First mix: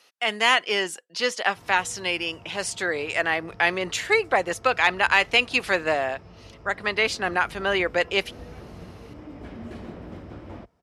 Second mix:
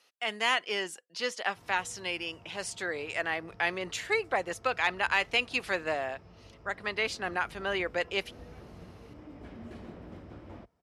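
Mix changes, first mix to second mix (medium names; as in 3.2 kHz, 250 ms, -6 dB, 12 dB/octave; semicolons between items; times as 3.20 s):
speech -8.0 dB; background -7.0 dB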